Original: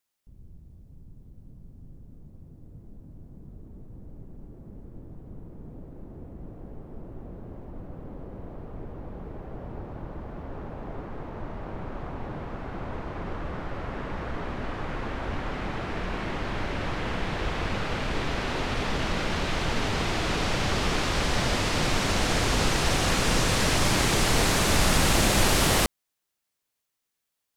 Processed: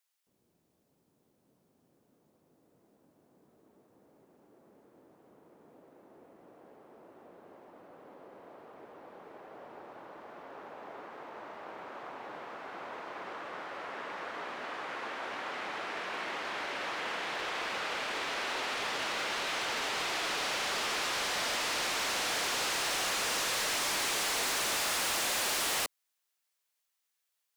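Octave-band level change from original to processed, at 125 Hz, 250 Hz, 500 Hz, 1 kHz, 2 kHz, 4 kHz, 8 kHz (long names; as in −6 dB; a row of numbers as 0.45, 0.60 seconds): −28.0, −17.0, −9.5, −5.5, −4.0, −4.0, −4.5 decibels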